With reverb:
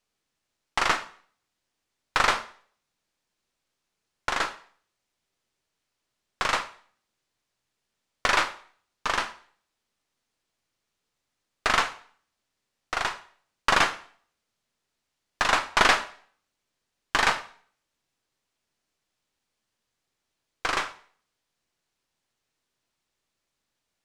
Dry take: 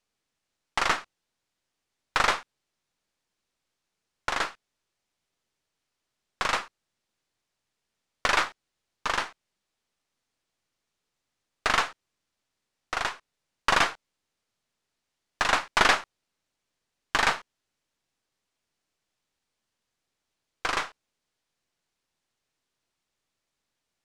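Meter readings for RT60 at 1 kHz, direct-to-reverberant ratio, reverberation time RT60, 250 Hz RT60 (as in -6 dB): 0.50 s, 11.0 dB, 0.50 s, 0.50 s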